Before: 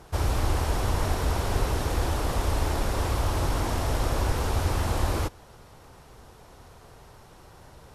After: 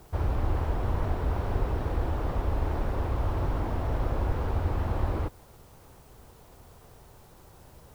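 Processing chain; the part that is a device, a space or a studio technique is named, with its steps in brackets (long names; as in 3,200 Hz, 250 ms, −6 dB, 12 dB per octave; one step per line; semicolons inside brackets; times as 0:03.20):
cassette deck with a dirty head (head-to-tape spacing loss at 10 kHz 36 dB; tape wow and flutter; white noise bed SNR 33 dB)
level −1.5 dB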